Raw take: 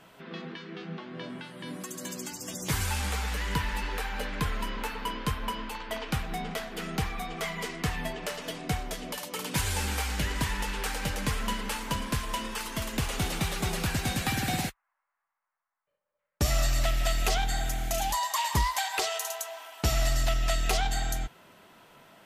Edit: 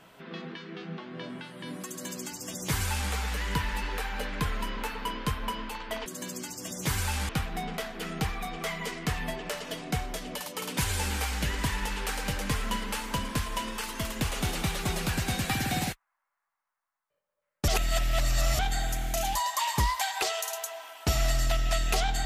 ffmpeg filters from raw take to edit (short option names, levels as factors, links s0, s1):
-filter_complex "[0:a]asplit=5[s0][s1][s2][s3][s4];[s0]atrim=end=6.062[s5];[s1]atrim=start=1.888:end=3.122[s6];[s2]atrim=start=6.058:end=16.452[s7];[s3]atrim=start=16.448:end=17.362,asetpts=PTS-STARTPTS,areverse[s8];[s4]atrim=start=17.358[s9];[s5][s6]acrossfade=d=0.004:c1=hsin:c2=hsin[s10];[s10][s7]acrossfade=d=0.004:c1=hsin:c2=hsin[s11];[s11][s8]acrossfade=d=0.004:c1=hsin:c2=hsin[s12];[s12][s9]acrossfade=d=0.004:c1=hsin:c2=hsin"